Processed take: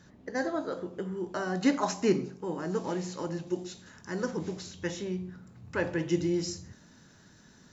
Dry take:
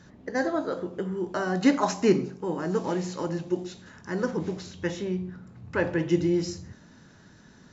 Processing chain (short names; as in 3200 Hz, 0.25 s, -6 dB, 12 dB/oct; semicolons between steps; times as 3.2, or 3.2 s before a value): high shelf 5400 Hz +4.5 dB, from 3.47 s +11 dB; gain -4.5 dB